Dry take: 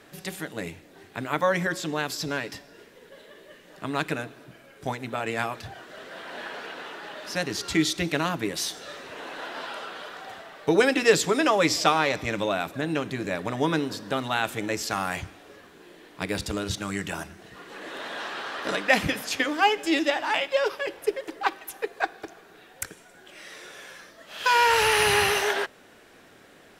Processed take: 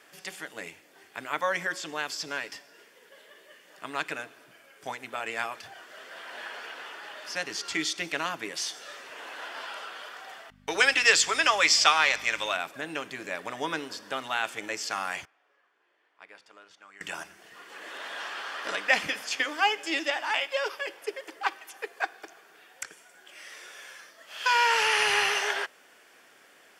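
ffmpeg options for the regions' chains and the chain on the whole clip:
ffmpeg -i in.wav -filter_complex "[0:a]asettb=1/sr,asplit=3[link_01][link_02][link_03];[link_01]atrim=end=10.504[link_04];[link_02]atrim=start=10.5:end=12.57,asetpts=PTS-STARTPTS,afade=type=in:duration=0.004:curve=qsin,afade=type=out:start_time=2.066:duration=0.004:curve=qsin,agate=range=-26dB:threshold=-41dB:ratio=16:release=100:detection=peak,tiltshelf=frequency=720:gain=-7.5,aeval=exprs='val(0)+0.0158*(sin(2*PI*50*n/s)+sin(2*PI*2*50*n/s)/2+sin(2*PI*3*50*n/s)/3+sin(2*PI*4*50*n/s)/4+sin(2*PI*5*50*n/s)/5)':channel_layout=same[link_05];[link_03]atrim=start=12.566[link_06];[link_04][link_05]acrossfade=duration=0.004:curve1=hsin:curve2=qsin[link_07];[link_07][link_06]acrossfade=duration=0.004:curve1=qsin:curve2=hsin,asettb=1/sr,asplit=3[link_08][link_09][link_10];[link_08]atrim=end=15.254[link_11];[link_09]atrim=start=15.25:end=17.01,asetpts=PTS-STARTPTS,afade=type=in:duration=0.004:curve=qsin,afade=type=out:start_time=1.756:duration=0.004:curve=qsin,lowpass=1100,aderivative,acontrast=65[link_12];[link_10]atrim=start=17.006[link_13];[link_11][link_12]acrossfade=duration=0.004:curve1=hsin:curve2=qsin[link_14];[link_14][link_13]acrossfade=duration=0.004:curve1=qsin:curve2=hsin,acrossover=split=8300[link_15][link_16];[link_16]acompressor=threshold=-56dB:ratio=4:attack=1:release=60[link_17];[link_15][link_17]amix=inputs=2:normalize=0,highpass=frequency=1100:poles=1,bandreject=frequency=3900:width=7.5" out.wav

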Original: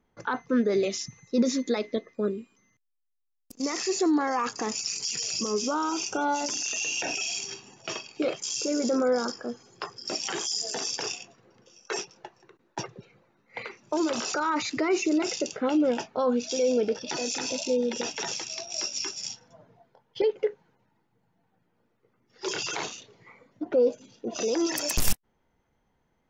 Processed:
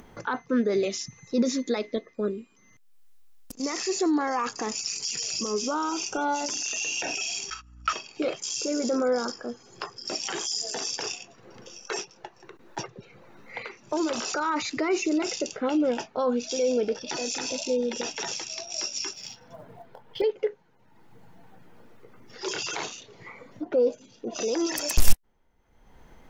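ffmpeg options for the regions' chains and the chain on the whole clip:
ffmpeg -i in.wav -filter_complex "[0:a]asettb=1/sr,asplit=3[link_01][link_02][link_03];[link_01]atrim=end=7.504[link_04];[link_02]atrim=start=7.5:end=7.93,asetpts=PTS-STARTPTS,afade=type=in:duration=0.004:curve=qsin,afade=type=out:start_time=0.426:duration=0.004:curve=qsin,agate=range=-26dB:threshold=-47dB:ratio=16:release=100:detection=peak,highpass=frequency=1300:width_type=q:width=16,aeval=exprs='val(0)+0.00158*(sin(2*PI*60*n/s)+sin(2*PI*2*60*n/s)/2+sin(2*PI*3*60*n/s)/3+sin(2*PI*4*60*n/s)/4+sin(2*PI*5*60*n/s)/5)':channel_layout=same[link_05];[link_03]atrim=start=7.926[link_06];[link_04][link_05]acrossfade=duration=0.004:curve1=hsin:curve2=qsin[link_07];[link_07][link_06]acrossfade=duration=0.004:curve1=qsin:curve2=hsin,asettb=1/sr,asplit=3[link_08][link_09][link_10];[link_08]atrim=end=19.134[link_11];[link_09]atrim=start=19.13:end=20.21,asetpts=PTS-STARTPTS,afade=type=in:duration=0.004:curve=qsin,afade=type=out:start_time=1.076:duration=0.004:curve=qsin,lowpass=4100,acrusher=bits=7:mode=log:mix=0:aa=0.000001[link_12];[link_10]atrim=start=20.206[link_13];[link_11][link_12]acrossfade=duration=0.004:curve1=hsin:curve2=qsin[link_14];[link_14][link_13]acrossfade=duration=0.004:curve1=qsin:curve2=hsin,asubboost=boost=2.5:cutoff=63,acompressor=mode=upward:threshold=-34dB:ratio=2.5" out.wav

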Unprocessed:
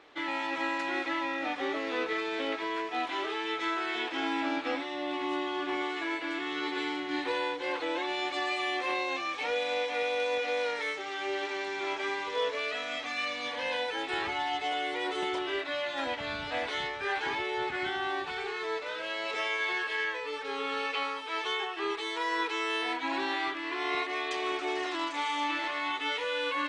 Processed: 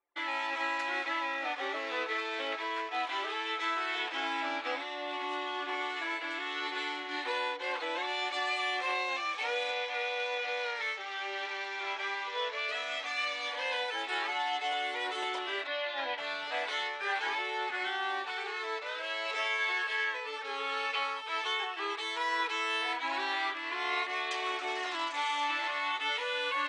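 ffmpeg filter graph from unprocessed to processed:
ffmpeg -i in.wav -filter_complex "[0:a]asettb=1/sr,asplit=3[link_01][link_02][link_03];[link_01]atrim=end=9.714[link_04];[link_02]atrim=start=9.71:end=12.69,asetpts=PTS-STARTPTS,afade=type=in:duration=0.004:curve=qsin,afade=type=out:start_time=2.976:duration=0.004:curve=qsin,highpass=210,lowpass=6000,lowshelf=frequency=490:gain=-5.5[link_05];[link_03]atrim=start=12.686[link_06];[link_04][link_05]acrossfade=duration=0.004:curve1=hsin:curve2=qsin[link_07];[link_07][link_06]acrossfade=duration=0.004:curve1=qsin:curve2=hsin,asettb=1/sr,asplit=3[link_08][link_09][link_10];[link_08]atrim=end=15.674[link_11];[link_09]atrim=start=15.67:end=16.18,asetpts=PTS-STARTPTS,afade=type=in:duration=0.004:curve=qsin,afade=type=out:start_time=0.506:duration=0.004:curve=qsin,lowpass=frequency=4900:width=0.5412,lowpass=frequency=4900:width=1.3066,bandreject=frequency=1300:width=7[link_12];[link_10]atrim=start=16.176[link_13];[link_11][link_12]acrossfade=duration=0.004:curve1=hsin:curve2=qsin[link_14];[link_14][link_13]acrossfade=duration=0.004:curve1=qsin:curve2=hsin,highpass=560,anlmdn=0.0398" out.wav

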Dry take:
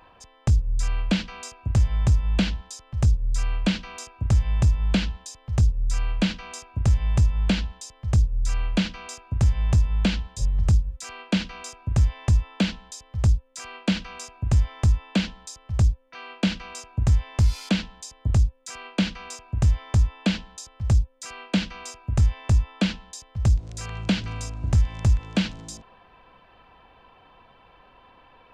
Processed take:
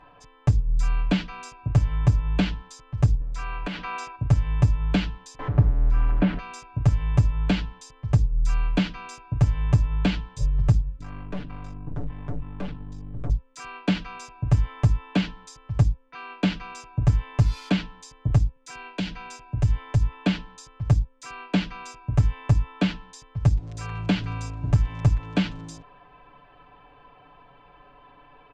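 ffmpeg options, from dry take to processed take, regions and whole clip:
ffmpeg -i in.wav -filter_complex "[0:a]asettb=1/sr,asplit=3[link_01][link_02][link_03];[link_01]atrim=end=3.214[link_04];[link_02]atrim=start=3.21:end=4.16,asetpts=PTS-STARTPTS,afade=type=in:duration=0.004:curve=qsin,afade=type=out:start_time=0.946:duration=0.004:curve=qsin,asplit=2[link_05][link_06];[link_06]highpass=frequency=720:poles=1,volume=16dB,asoftclip=type=tanh:threshold=-11.5dB[link_07];[link_05][link_07]amix=inputs=2:normalize=0,lowpass=frequency=1900:poles=1,volume=-6dB,acompressor=threshold=-28dB:ratio=5:attack=3.2:release=140:knee=1:detection=peak[link_08];[link_03]atrim=start=4.156[link_09];[link_04][link_08]acrossfade=duration=0.004:curve1=hsin:curve2=qsin[link_10];[link_10][link_09]acrossfade=duration=0.004:curve1=qsin:curve2=hsin,asettb=1/sr,asplit=3[link_11][link_12][link_13];[link_11]atrim=end=5.394[link_14];[link_12]atrim=start=5.39:end=6.39,asetpts=PTS-STARTPTS,afade=type=in:duration=0.004:curve=qsin,afade=type=out:start_time=0.996:duration=0.004:curve=qsin,aeval=exprs='val(0)+0.5*0.0473*sgn(val(0))':channel_layout=same,lowpass=1700,bandreject=frequency=460:width=15[link_15];[link_13]atrim=start=6.386[link_16];[link_14][link_15]acrossfade=duration=0.004:curve1=hsin:curve2=qsin[link_17];[link_17][link_16]acrossfade=duration=0.004:curve1=qsin:curve2=hsin,asettb=1/sr,asplit=3[link_18][link_19][link_20];[link_18]atrim=end=10.994[link_21];[link_19]atrim=start=10.99:end=13.3,asetpts=PTS-STARTPTS,afade=type=in:duration=0.004:curve=qsin,afade=type=out:start_time=2.306:duration=0.004:curve=qsin,lowpass=frequency=1300:poles=1,aeval=exprs='val(0)+0.0251*(sin(2*PI*50*n/s)+sin(2*PI*2*50*n/s)/2+sin(2*PI*3*50*n/s)/3+sin(2*PI*4*50*n/s)/4+sin(2*PI*5*50*n/s)/5)':channel_layout=same,aeval=exprs='(tanh(31.6*val(0)+0.8)-tanh(0.8))/31.6':channel_layout=same[link_22];[link_20]atrim=start=13.296[link_23];[link_21][link_22]acrossfade=duration=0.004:curve1=hsin:curve2=qsin[link_24];[link_24][link_23]acrossfade=duration=0.004:curve1=qsin:curve2=hsin,asettb=1/sr,asplit=3[link_25][link_26][link_27];[link_25]atrim=end=18.564[link_28];[link_26]atrim=start=18.56:end=20.13,asetpts=PTS-STARTPTS,afade=type=in:duration=0.004:curve=qsin,afade=type=out:start_time=1.566:duration=0.004:curve=qsin,bandreject=frequency=1200:width=7.5,acrossover=split=130|3000[link_29][link_30][link_31];[link_30]acompressor=threshold=-31dB:ratio=2.5:attack=3.2:release=140:knee=2.83:detection=peak[link_32];[link_29][link_32][link_31]amix=inputs=3:normalize=0[link_33];[link_27]atrim=start=20.126[link_34];[link_28][link_33]acrossfade=duration=0.004:curve1=hsin:curve2=qsin[link_35];[link_35][link_34]acrossfade=duration=0.004:curve1=qsin:curve2=hsin,lowpass=frequency=1900:poles=1,aecho=1:1:6.9:0.88" out.wav

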